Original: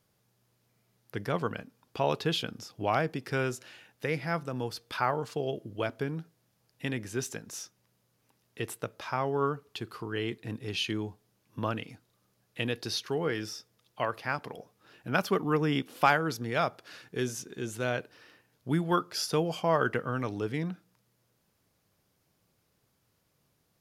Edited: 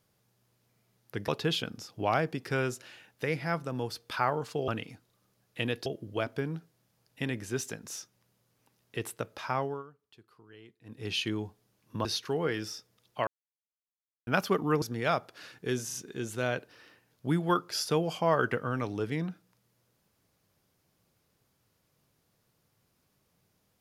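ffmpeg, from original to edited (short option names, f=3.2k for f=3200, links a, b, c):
-filter_complex "[0:a]asplit=12[a][b][c][d][e][f][g][h][i][j][k][l];[a]atrim=end=1.282[m];[b]atrim=start=2.088:end=5.492[n];[c]atrim=start=11.678:end=12.862[o];[d]atrim=start=5.488:end=9.46,asetpts=PTS-STARTPTS,afade=t=out:st=3.732:d=0.24:silence=0.1[p];[e]atrim=start=9.46:end=10.47,asetpts=PTS-STARTPTS,volume=-20dB[q];[f]atrim=start=10.47:end=11.682,asetpts=PTS-STARTPTS,afade=t=in:d=0.24:silence=0.1[r];[g]atrim=start=12.858:end=14.08,asetpts=PTS-STARTPTS,afade=t=out:st=1.218:d=0.004:c=hsin[s];[h]atrim=start=14.08:end=15.08,asetpts=PTS-STARTPTS,volume=0[t];[i]atrim=start=15.08:end=15.632,asetpts=PTS-STARTPTS,afade=t=in:d=0.004:c=hsin[u];[j]atrim=start=16.318:end=17.402[v];[k]atrim=start=17.358:end=17.402[w];[l]atrim=start=17.358[x];[m][n]acrossfade=d=0.004:c1=hsin:c2=hsin[y];[y][o]acrossfade=d=0.004:c1=hsin:c2=hsin[z];[p][q][r]concat=n=3:v=0:a=1[aa];[z][aa]acrossfade=d=0.004:c1=hsin:c2=hsin[ab];[s][t][u]concat=n=3:v=0:a=1[ac];[ab][ac]acrossfade=d=0.004:c1=hsin:c2=hsin[ad];[ad][v]acrossfade=d=0.004:c1=hsin:c2=hsin[ae];[ae][w]acrossfade=d=0.004:c1=hsin:c2=hsin[af];[af][x]acrossfade=d=0.004:c1=hsin:c2=hsin"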